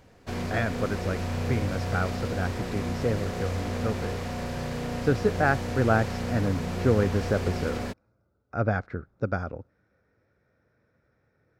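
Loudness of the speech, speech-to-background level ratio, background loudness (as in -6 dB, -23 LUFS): -29.5 LUFS, 2.5 dB, -32.0 LUFS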